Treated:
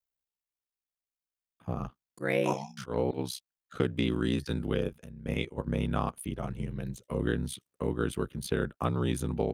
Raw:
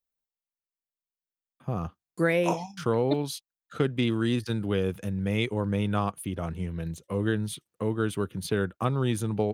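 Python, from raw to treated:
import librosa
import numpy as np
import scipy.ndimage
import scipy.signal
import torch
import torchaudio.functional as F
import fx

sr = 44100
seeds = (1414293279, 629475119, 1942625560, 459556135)

y = x * np.sin(2.0 * np.pi * 32.0 * np.arange(len(x)) / sr)
y = fx.auto_swell(y, sr, attack_ms=129.0, at=(1.74, 3.17), fade=0.02)
y = fx.level_steps(y, sr, step_db=15, at=(4.82, 5.66), fade=0.02)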